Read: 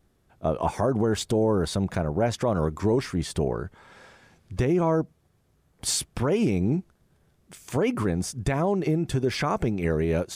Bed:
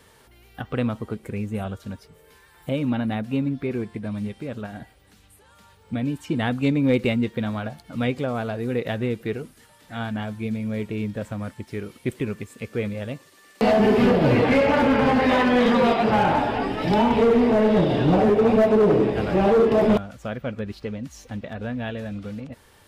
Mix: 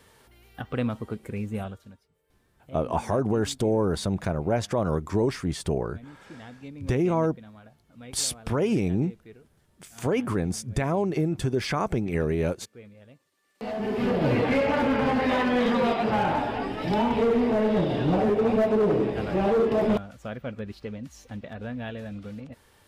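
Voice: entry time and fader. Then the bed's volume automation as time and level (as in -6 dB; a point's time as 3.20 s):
2.30 s, -1.0 dB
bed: 1.61 s -3 dB
2.05 s -20.5 dB
13.37 s -20.5 dB
14.22 s -5 dB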